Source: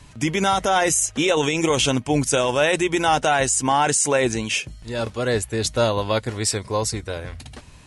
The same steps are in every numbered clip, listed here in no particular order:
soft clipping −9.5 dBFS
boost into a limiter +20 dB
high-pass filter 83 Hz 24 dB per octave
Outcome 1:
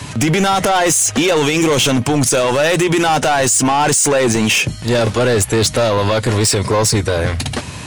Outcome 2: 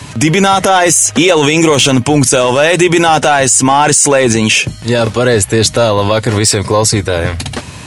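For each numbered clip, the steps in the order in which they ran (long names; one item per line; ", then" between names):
boost into a limiter, then high-pass filter, then soft clipping
high-pass filter, then soft clipping, then boost into a limiter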